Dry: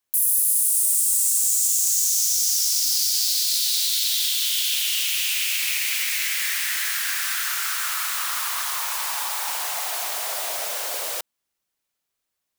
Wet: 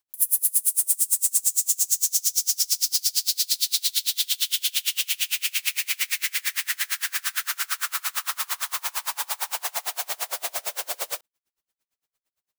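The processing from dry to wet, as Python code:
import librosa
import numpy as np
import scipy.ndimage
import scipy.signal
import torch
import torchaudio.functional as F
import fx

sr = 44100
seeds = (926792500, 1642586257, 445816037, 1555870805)

y = np.clip(10.0 ** (12.0 / 20.0) * x, -1.0, 1.0) / 10.0 ** (12.0 / 20.0)
y = y * 10.0 ** (-32 * (0.5 - 0.5 * np.cos(2.0 * np.pi * 8.8 * np.arange(len(y)) / sr)) / 20.0)
y = y * 10.0 ** (3.5 / 20.0)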